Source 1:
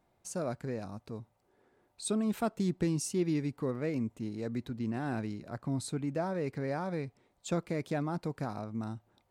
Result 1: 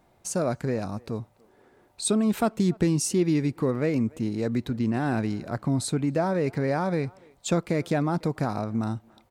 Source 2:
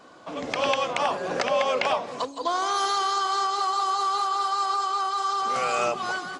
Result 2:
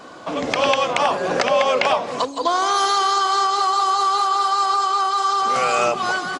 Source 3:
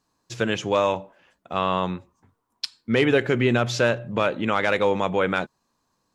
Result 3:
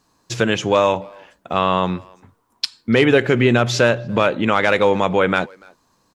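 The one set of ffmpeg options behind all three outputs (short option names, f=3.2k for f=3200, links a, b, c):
-filter_complex "[0:a]asplit=2[a][b];[b]acompressor=threshold=-33dB:ratio=6,volume=0.5dB[c];[a][c]amix=inputs=2:normalize=0,asplit=2[d][e];[e]adelay=290,highpass=300,lowpass=3.4k,asoftclip=type=hard:threshold=-14.5dB,volume=-25dB[f];[d][f]amix=inputs=2:normalize=0,volume=4dB"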